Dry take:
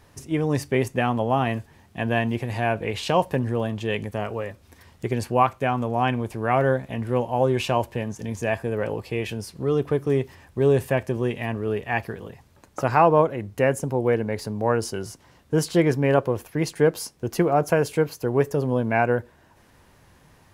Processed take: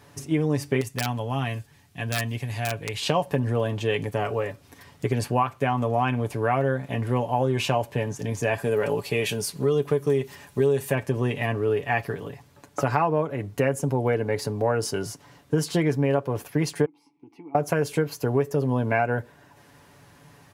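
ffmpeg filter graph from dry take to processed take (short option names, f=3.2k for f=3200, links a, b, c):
-filter_complex "[0:a]asettb=1/sr,asplit=3[a][b][c];[a]atrim=end=0.814[d];[b]atrim=start=0.81:end=3.02,asetpts=PTS-STARTPTS,afade=t=in:d=0.004:c=qsin,afade=t=out:st=2.206:d=0.004:c=qsin,equalizer=f=530:w=0.31:g=-11,aeval=exprs='(mod(8.41*val(0)+1,2)-1)/8.41':c=same[e];[c]atrim=start=3.016[f];[d][e]acrossfade=d=0.004:c1=hsin:c2=qsin[g];[g][f]acrossfade=d=0.004:c1=qsin:c2=hsin,asettb=1/sr,asplit=3[h][i][j];[h]atrim=end=8.584[k];[i]atrim=start=8.58:end=10.95,asetpts=PTS-STARTPTS,afade=t=in:d=0.004:c=qsin,afade=t=out:st=2.366:d=0.004:c=qsin,highshelf=f=3.3k:g=8,bandreject=f=5.1k:w=21,aecho=1:1:4.9:0.34,atrim=end_sample=104517[l];[j]atrim=start=10.946[m];[k][l]acrossfade=d=0.004:c1=hsin:c2=qsin[n];[n][m]acrossfade=d=0.004:c1=qsin:c2=hsin,asettb=1/sr,asplit=3[o][p][q];[o]atrim=end=16.854[r];[p]atrim=start=16.85:end=17.55,asetpts=PTS-STARTPTS,afade=t=in:d=0.004:c=qsin,afade=t=out:st=0.696:d=0.004:c=qsin,bandreject=f=6.9k:w=6.6,acompressor=threshold=-36dB:ratio=2.5:attack=3.2:release=140:knee=1:detection=peak,asplit=3[s][t][u];[s]bandpass=f=300:t=q:w=8,volume=0dB[v];[t]bandpass=f=870:t=q:w=8,volume=-6dB[w];[u]bandpass=f=2.24k:t=q:w=8,volume=-9dB[x];[v][w][x]amix=inputs=3:normalize=0[y];[q]atrim=start=17.546[z];[r][y]acrossfade=d=0.004:c1=hsin:c2=qsin[aa];[aa][z]acrossfade=d=0.004:c1=qsin:c2=hsin,highpass=74,aecho=1:1:7:0.53,acompressor=threshold=-21dB:ratio=5,volume=2dB"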